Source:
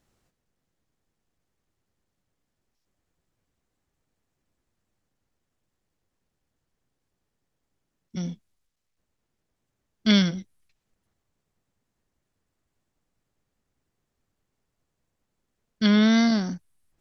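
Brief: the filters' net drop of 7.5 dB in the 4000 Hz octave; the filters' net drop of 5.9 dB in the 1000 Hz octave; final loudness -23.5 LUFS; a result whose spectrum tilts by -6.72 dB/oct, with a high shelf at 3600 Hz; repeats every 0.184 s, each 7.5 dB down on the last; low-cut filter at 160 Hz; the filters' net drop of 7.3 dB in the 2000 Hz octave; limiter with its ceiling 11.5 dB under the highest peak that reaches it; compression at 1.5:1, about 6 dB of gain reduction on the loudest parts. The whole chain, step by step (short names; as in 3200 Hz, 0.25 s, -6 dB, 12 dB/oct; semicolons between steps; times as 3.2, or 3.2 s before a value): HPF 160 Hz; bell 1000 Hz -7 dB; bell 2000 Hz -4.5 dB; high shelf 3600 Hz -5.5 dB; bell 4000 Hz -4 dB; compressor 1.5:1, threshold -34 dBFS; limiter -28 dBFS; feedback echo 0.184 s, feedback 42%, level -7.5 dB; gain +14 dB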